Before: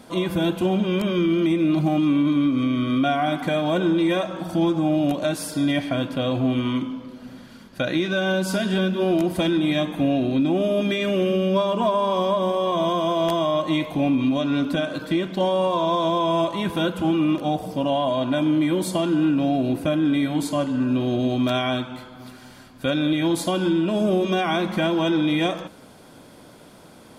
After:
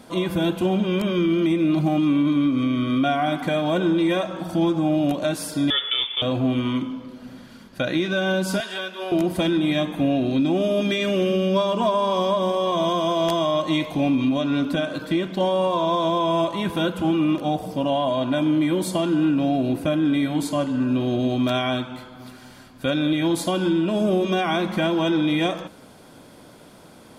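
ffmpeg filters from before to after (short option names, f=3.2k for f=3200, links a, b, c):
-filter_complex "[0:a]asettb=1/sr,asplit=3[a][b][c];[a]atrim=end=5.704[d];[b]atrim=start=5.7:end=6.22,asetpts=PTS-STARTPTS,afade=t=in:d=0.004:c=qsin,afade=t=out:st=0.516:d=0.004:c=qsin,lowpass=f=3.1k:t=q:w=0.5098,lowpass=f=3.1k:t=q:w=0.6013,lowpass=f=3.1k:t=q:w=0.9,lowpass=f=3.1k:t=q:w=2.563,afreqshift=-3700[e];[c]atrim=start=6.216[f];[d][e]acrossfade=d=0.004:c1=hsin:c2=qsin[g];[g][f]acrossfade=d=0.004:c1=qsin:c2=hsin,asettb=1/sr,asplit=3[h][i][j];[h]atrim=end=8.604[k];[i]atrim=start=8.6:end=9.12,asetpts=PTS-STARTPTS,afade=t=in:d=0.004:c=qsin,afade=t=out:st=0.516:d=0.004:c=qsin,highpass=730[l];[j]atrim=start=9.116[m];[k][l]acrossfade=d=0.004:c1=hsin:c2=qsin[n];[n][m]acrossfade=d=0.004:c1=qsin:c2=hsin,asettb=1/sr,asplit=3[o][p][q];[o]atrim=end=10.264[r];[p]atrim=start=10.26:end=14.25,asetpts=PTS-STARTPTS,afade=t=in:d=0.004:c=qsin,afade=t=out:st=3.986:d=0.004:c=qsin,equalizer=f=5.5k:w=1:g=5[s];[q]atrim=start=14.246[t];[r][s]acrossfade=d=0.004:c1=hsin:c2=qsin[u];[u][t]acrossfade=d=0.004:c1=qsin:c2=hsin"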